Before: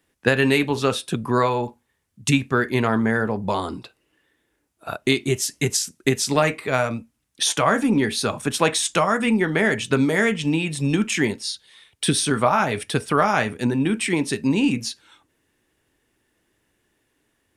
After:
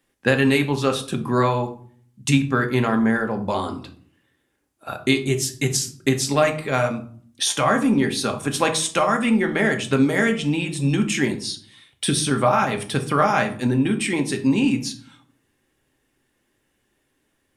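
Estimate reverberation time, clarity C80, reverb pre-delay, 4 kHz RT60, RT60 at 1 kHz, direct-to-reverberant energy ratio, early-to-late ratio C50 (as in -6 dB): 0.50 s, 17.5 dB, 4 ms, 0.35 s, 0.50 s, 5.0 dB, 12.5 dB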